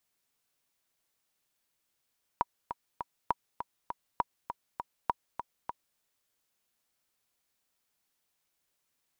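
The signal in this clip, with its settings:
click track 201 BPM, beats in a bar 3, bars 4, 960 Hz, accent 9 dB −13 dBFS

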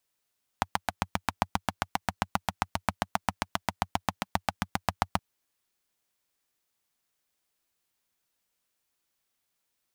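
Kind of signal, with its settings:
pulse-train model of a single-cylinder engine, steady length 4.57 s, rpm 900, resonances 93/190/800 Hz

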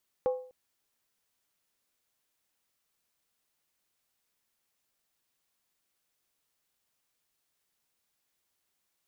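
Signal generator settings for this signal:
struck skin length 0.25 s, lowest mode 508 Hz, decay 0.47 s, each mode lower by 11 dB, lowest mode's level −22 dB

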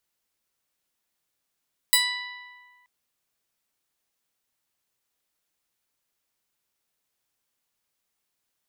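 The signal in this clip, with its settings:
Karplus-Strong string B5, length 0.93 s, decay 1.77 s, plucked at 0.15, bright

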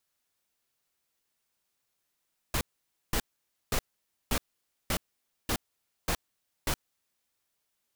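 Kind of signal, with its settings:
noise bursts pink, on 0.07 s, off 0.52 s, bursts 8, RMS −28 dBFS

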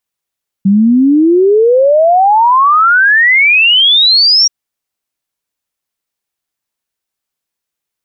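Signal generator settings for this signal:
exponential sine sweep 190 Hz → 5,700 Hz 3.83 s −4.5 dBFS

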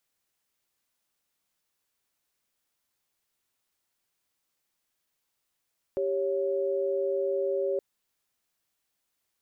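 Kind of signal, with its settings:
held notes G4/C#5 sine, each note −28 dBFS 1.82 s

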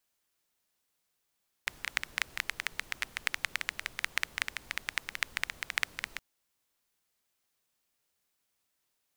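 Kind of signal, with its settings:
rain-like ticks over hiss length 4.52 s, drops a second 11, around 2,000 Hz, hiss −17 dB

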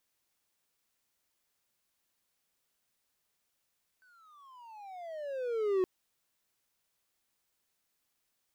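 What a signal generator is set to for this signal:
pitch glide with a swell triangle, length 1.82 s, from 1,540 Hz, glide −25 semitones, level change +37 dB, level −22.5 dB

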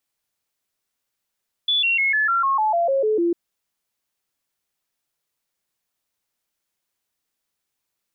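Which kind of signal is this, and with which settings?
stepped sweep 3,450 Hz down, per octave 3, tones 11, 0.15 s, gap 0.00 s −16.5 dBFS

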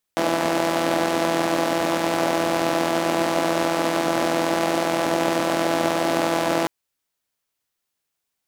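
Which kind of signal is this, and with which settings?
pulse-train model of a four-cylinder engine, steady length 6.50 s, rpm 5,000, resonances 320/590 Hz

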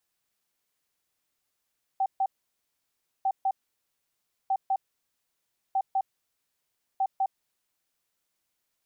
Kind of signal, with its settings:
beeps in groups sine 773 Hz, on 0.06 s, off 0.14 s, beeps 2, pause 0.99 s, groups 5, −22 dBFS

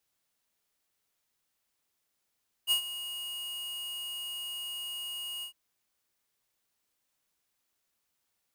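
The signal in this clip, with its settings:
note with an ADSR envelope square 2,870 Hz, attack 42 ms, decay 98 ms, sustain −14 dB, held 2.76 s, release 96 ms −24.5 dBFS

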